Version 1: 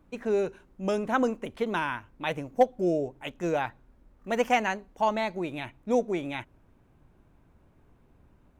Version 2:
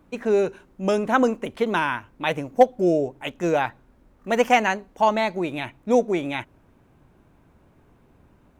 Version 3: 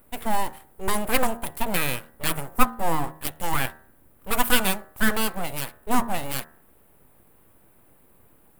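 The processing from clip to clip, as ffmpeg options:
-af "lowshelf=f=69:g=-8.5,volume=6.5dB"
-af "aeval=exprs='abs(val(0))':c=same,aexciter=amount=6.2:drive=8.7:freq=8.6k,bandreject=f=77.72:t=h:w=4,bandreject=f=155.44:t=h:w=4,bandreject=f=233.16:t=h:w=4,bandreject=f=310.88:t=h:w=4,bandreject=f=388.6:t=h:w=4,bandreject=f=466.32:t=h:w=4,bandreject=f=544.04:t=h:w=4,bandreject=f=621.76:t=h:w=4,bandreject=f=699.48:t=h:w=4,bandreject=f=777.2:t=h:w=4,bandreject=f=854.92:t=h:w=4,bandreject=f=932.64:t=h:w=4,bandreject=f=1.01036k:t=h:w=4,bandreject=f=1.08808k:t=h:w=4,bandreject=f=1.1658k:t=h:w=4,bandreject=f=1.24352k:t=h:w=4,bandreject=f=1.32124k:t=h:w=4,bandreject=f=1.39896k:t=h:w=4,bandreject=f=1.47668k:t=h:w=4,bandreject=f=1.5544k:t=h:w=4,bandreject=f=1.63212k:t=h:w=4,bandreject=f=1.70984k:t=h:w=4,bandreject=f=1.78756k:t=h:w=4,bandreject=f=1.86528k:t=h:w=4,bandreject=f=1.943k:t=h:w=4"

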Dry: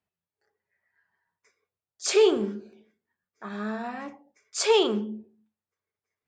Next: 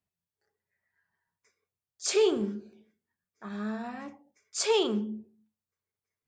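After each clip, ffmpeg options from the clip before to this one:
-af "bass=f=250:g=7,treble=f=4k:g=4,volume=-5.5dB"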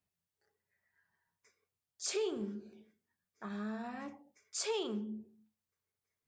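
-af "acompressor=threshold=-42dB:ratio=2"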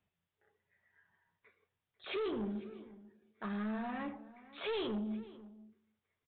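-filter_complex "[0:a]aresample=8000,asoftclip=type=tanh:threshold=-39.5dB,aresample=44100,asplit=2[a][b];[b]adelay=495.6,volume=-18dB,highshelf=f=4k:g=-11.2[c];[a][c]amix=inputs=2:normalize=0,volume=6dB"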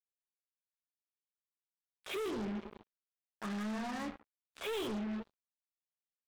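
-af "acrusher=bits=6:mix=0:aa=0.5"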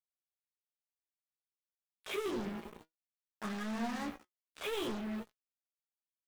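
-filter_complex "[0:a]acrusher=bits=9:mix=0:aa=0.000001,asplit=2[a][b];[b]adelay=17,volume=-8.5dB[c];[a][c]amix=inputs=2:normalize=0,flanger=delay=4:depth=2.5:regen=73:speed=0.54:shape=triangular,volume=5dB"

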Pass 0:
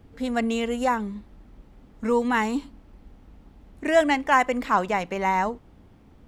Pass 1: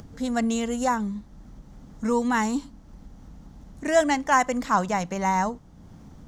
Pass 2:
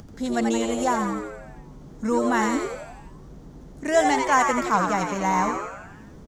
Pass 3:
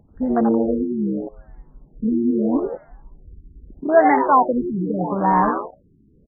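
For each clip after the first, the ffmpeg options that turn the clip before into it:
-af "equalizer=f=160:t=o:w=0.67:g=7,equalizer=f=400:t=o:w=0.67:g=-5,equalizer=f=2.5k:t=o:w=0.67:g=-7,equalizer=f=6.3k:t=o:w=0.67:g=10,acompressor=mode=upward:threshold=-38dB:ratio=2.5"
-filter_complex "[0:a]asplit=9[a][b][c][d][e][f][g][h][i];[b]adelay=86,afreqshift=110,volume=-5dB[j];[c]adelay=172,afreqshift=220,volume=-9.9dB[k];[d]adelay=258,afreqshift=330,volume=-14.8dB[l];[e]adelay=344,afreqshift=440,volume=-19.6dB[m];[f]adelay=430,afreqshift=550,volume=-24.5dB[n];[g]adelay=516,afreqshift=660,volume=-29.4dB[o];[h]adelay=602,afreqshift=770,volume=-34.3dB[p];[i]adelay=688,afreqshift=880,volume=-39.2dB[q];[a][j][k][l][m][n][o][p][q]amix=inputs=9:normalize=0"
-af "afwtdn=0.0562,afftfilt=real='re*lt(b*sr/1024,410*pow(2200/410,0.5+0.5*sin(2*PI*0.79*pts/sr)))':imag='im*lt(b*sr/1024,410*pow(2200/410,0.5+0.5*sin(2*PI*0.79*pts/sr)))':win_size=1024:overlap=0.75,volume=6dB"

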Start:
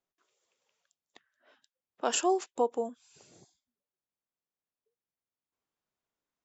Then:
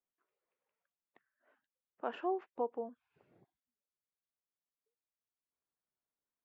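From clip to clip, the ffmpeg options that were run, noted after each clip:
-af "lowpass=f=2.2k:w=0.5412,lowpass=f=2.2k:w=1.3066,volume=-8dB"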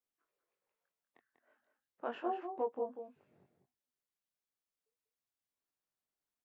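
-filter_complex "[0:a]flanger=delay=19:depth=5.3:speed=0.37,asplit=2[a][b];[b]adelay=192.4,volume=-7dB,highshelf=f=4k:g=-4.33[c];[a][c]amix=inputs=2:normalize=0,volume=2dB"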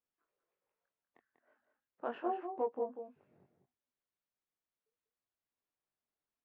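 -af "adynamicsmooth=sensitivity=1.5:basefreq=3.2k,volume=1dB"

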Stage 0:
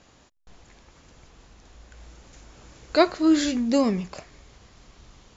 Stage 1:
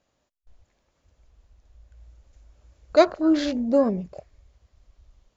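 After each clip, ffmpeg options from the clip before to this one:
-af "afwtdn=0.0224,equalizer=f=590:t=o:w=0.39:g=7.5,volume=-1.5dB"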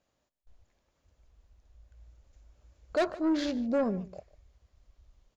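-af "asoftclip=type=tanh:threshold=-16.5dB,aecho=1:1:148:0.1,volume=-5dB"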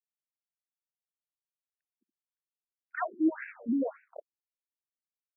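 -af "aeval=exprs='sgn(val(0))*max(abs(val(0))-0.00398,0)':c=same,asuperstop=centerf=3300:order=8:qfactor=1.7,afftfilt=real='re*between(b*sr/1024,250*pow(2100/250,0.5+0.5*sin(2*PI*1.8*pts/sr))/1.41,250*pow(2100/250,0.5+0.5*sin(2*PI*1.8*pts/sr))*1.41)':imag='im*between(b*sr/1024,250*pow(2100/250,0.5+0.5*sin(2*PI*1.8*pts/sr))/1.41,250*pow(2100/250,0.5+0.5*sin(2*PI*1.8*pts/sr))*1.41)':win_size=1024:overlap=0.75,volume=5dB"

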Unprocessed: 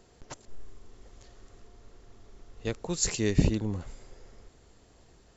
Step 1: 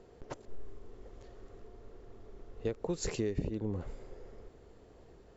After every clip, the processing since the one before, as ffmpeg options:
-af "lowpass=f=1.8k:p=1,equalizer=f=440:w=1.6:g=7,acompressor=threshold=-30dB:ratio=10"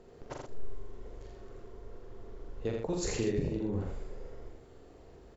-filter_complex "[0:a]asplit=2[a][b];[b]adelay=43,volume=-4dB[c];[a][c]amix=inputs=2:normalize=0,aecho=1:1:82:0.631"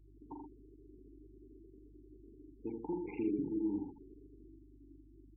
-filter_complex "[0:a]asplit=3[a][b][c];[a]bandpass=f=300:t=q:w=8,volume=0dB[d];[b]bandpass=f=870:t=q:w=8,volume=-6dB[e];[c]bandpass=f=2.24k:t=q:w=8,volume=-9dB[f];[d][e][f]amix=inputs=3:normalize=0,aeval=exprs='val(0)+0.000562*(sin(2*PI*50*n/s)+sin(2*PI*2*50*n/s)/2+sin(2*PI*3*50*n/s)/3+sin(2*PI*4*50*n/s)/4+sin(2*PI*5*50*n/s)/5)':c=same,afftfilt=real='re*gte(hypot(re,im),0.00282)':imag='im*gte(hypot(re,im),0.00282)':win_size=1024:overlap=0.75,volume=6.5dB"

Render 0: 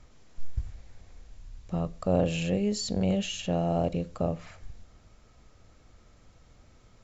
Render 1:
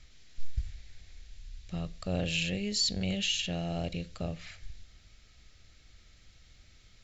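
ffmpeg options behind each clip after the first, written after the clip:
-af "equalizer=f=125:t=o:w=1:g=-4,equalizer=f=250:t=o:w=1:g=-6,equalizer=f=500:t=o:w=1:g=-7,equalizer=f=1k:t=o:w=1:g=-12,equalizer=f=2k:t=o:w=1:g=5,equalizer=f=4k:t=o:w=1:g=8"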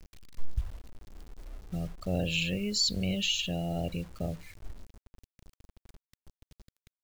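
-af "afftdn=nr=21:nf=-41,acrusher=bits=8:mix=0:aa=0.000001,volume=1.5dB"

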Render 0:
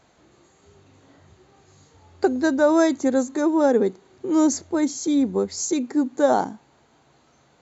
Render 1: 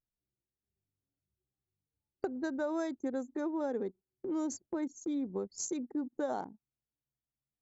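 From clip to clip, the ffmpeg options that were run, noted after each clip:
-af "anlmdn=100,agate=range=-10dB:threshold=-37dB:ratio=16:detection=peak,acompressor=threshold=-27dB:ratio=3,volume=-7.5dB"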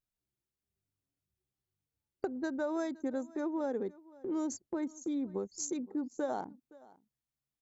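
-af "aecho=1:1:518:0.0794"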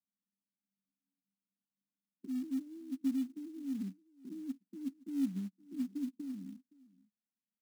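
-filter_complex "[0:a]asuperpass=centerf=220:order=8:qfactor=2.1,asplit=2[a][b];[b]adelay=15,volume=-12.5dB[c];[a][c]amix=inputs=2:normalize=0,acrusher=bits=6:mode=log:mix=0:aa=0.000001,volume=4dB"

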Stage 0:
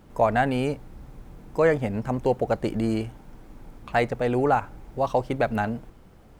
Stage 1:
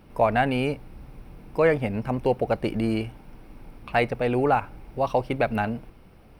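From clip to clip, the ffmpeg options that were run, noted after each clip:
-af "superequalizer=12b=1.78:15b=0.282"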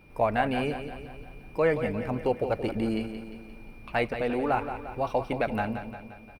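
-af "aeval=exprs='val(0)+0.00178*sin(2*PI*2400*n/s)':c=same,flanger=delay=2.1:depth=2.1:regen=-75:speed=0.83:shape=sinusoidal,aecho=1:1:175|350|525|700|875|1050:0.335|0.181|0.0977|0.0527|0.0285|0.0154"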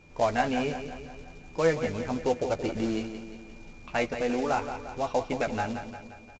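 -filter_complex "[0:a]aresample=16000,acrusher=bits=4:mode=log:mix=0:aa=0.000001,aresample=44100,asplit=2[a][b];[b]adelay=12,volume=-7dB[c];[a][c]amix=inputs=2:normalize=0,volume=-1.5dB" -ar 16000 -c:a pcm_alaw

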